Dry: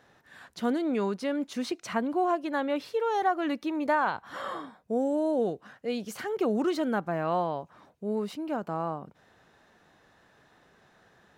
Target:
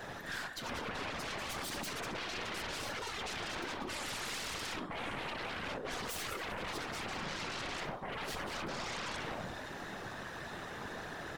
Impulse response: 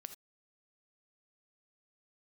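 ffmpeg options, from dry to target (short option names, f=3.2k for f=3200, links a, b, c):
-filter_complex "[0:a]aecho=1:1:191|382|573:0.501|0.105|0.0221,flanger=delay=5.9:depth=6.7:regen=74:speed=1.1:shape=sinusoidal[a];[1:a]atrim=start_sample=2205[b];[a][b]afir=irnorm=-1:irlink=0,areverse,acompressor=threshold=-50dB:ratio=20,areverse,aeval=exprs='0.00708*sin(PI/2*7.08*val(0)/0.00708)':c=same,afftfilt=real='hypot(re,im)*cos(2*PI*random(0))':imag='hypot(re,im)*sin(2*PI*random(1))':win_size=512:overlap=0.75,aeval=exprs='0.0112*(cos(1*acos(clip(val(0)/0.0112,-1,1)))-cos(1*PI/2))+0.00112*(cos(4*acos(clip(val(0)/0.0112,-1,1)))-cos(4*PI/2))':c=same,volume=11.5dB"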